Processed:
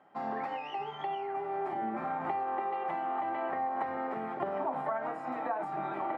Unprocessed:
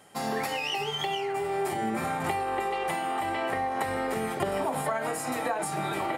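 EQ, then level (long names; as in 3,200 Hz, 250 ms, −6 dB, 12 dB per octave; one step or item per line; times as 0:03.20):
Bessel high-pass filter 350 Hz, order 2
low-pass filter 1,100 Hz 12 dB per octave
parametric band 460 Hz −9 dB 0.51 octaves
0.0 dB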